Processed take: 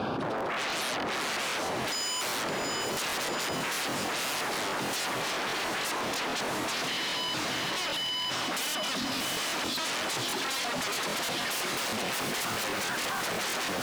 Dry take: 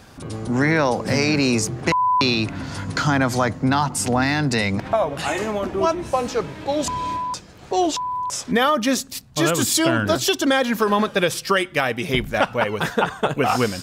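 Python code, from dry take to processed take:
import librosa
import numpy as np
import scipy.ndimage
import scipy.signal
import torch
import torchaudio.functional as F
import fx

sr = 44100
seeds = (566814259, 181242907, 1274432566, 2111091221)

p1 = fx.air_absorb(x, sr, metres=390.0)
p2 = fx.rider(p1, sr, range_db=4, speed_s=0.5)
p3 = p1 + (p2 * librosa.db_to_amplitude(-1.0))
p4 = fx.filter_lfo_notch(p3, sr, shape='square', hz=0.22, low_hz=480.0, high_hz=1900.0, q=1.4)
p5 = 10.0 ** (-26.5 / 20.0) * (np.abs((p4 / 10.0 ** (-26.5 / 20.0) + 3.0) % 4.0 - 2.0) - 1.0)
p6 = scipy.signal.sosfilt(scipy.signal.bessel(2, 280.0, 'highpass', norm='mag', fs=sr, output='sos'), p5)
p7 = p6 + fx.echo_diffused(p6, sr, ms=716, feedback_pct=52, wet_db=-5.0, dry=0)
p8 = 10.0 ** (-26.5 / 20.0) * np.tanh(p7 / 10.0 ** (-26.5 / 20.0))
p9 = fx.buffer_crackle(p8, sr, first_s=0.36, period_s=0.16, block=1024, kind='repeat')
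y = fx.env_flatten(p9, sr, amount_pct=100)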